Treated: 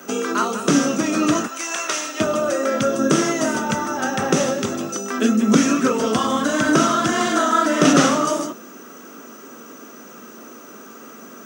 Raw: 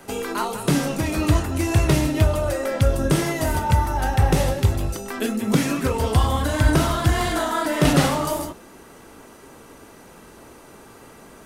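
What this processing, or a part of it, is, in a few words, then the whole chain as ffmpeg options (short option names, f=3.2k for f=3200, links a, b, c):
old television with a line whistle: -filter_complex "[0:a]asettb=1/sr,asplit=3[a][b][c];[a]atrim=end=1.474[d];[b]atrim=start=1.47:end=2.2,asetpts=PTS-STARTPTS,afade=t=in:d=0.004:c=qsin,afade=t=out:st=0.726:d=0.004:c=qsin,highpass=920[e];[c]atrim=start=2.196[f];[d][e]acrossfade=d=0.004:c1=hsin:c2=qsin[g];[g][f]acrossfade=d=0.004:c1=qsin:c2=hsin,highpass=f=200:w=0.5412,highpass=f=200:w=1.3066,equalizer=f=230:t=q:w=4:g=7,equalizer=f=870:t=q:w=4:g=-8,equalizer=f=1.3k:t=q:w=4:g=7,equalizer=f=2.1k:t=q:w=4:g=-4,equalizer=f=4.3k:t=q:w=4:g=-6,equalizer=f=6.1k:t=q:w=4:g=9,lowpass=f=7.9k:w=0.5412,lowpass=f=7.9k:w=1.3066,aeval=exprs='val(0)+0.00316*sin(2*PI*15625*n/s)':c=same,volume=4dB"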